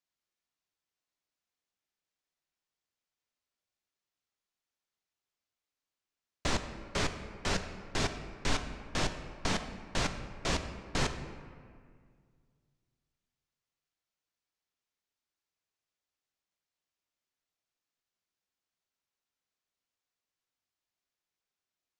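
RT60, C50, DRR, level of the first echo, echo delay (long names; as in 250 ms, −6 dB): 2.0 s, 9.0 dB, 7.0 dB, no echo audible, no echo audible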